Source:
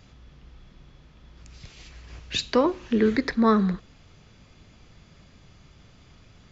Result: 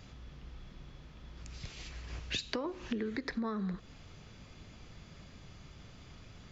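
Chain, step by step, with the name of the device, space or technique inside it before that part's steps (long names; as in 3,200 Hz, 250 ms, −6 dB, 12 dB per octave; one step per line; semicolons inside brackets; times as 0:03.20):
serial compression, leveller first (downward compressor 2.5 to 1, threshold −23 dBFS, peak gain reduction 6.5 dB; downward compressor 8 to 1, threshold −33 dBFS, peak gain reduction 13 dB)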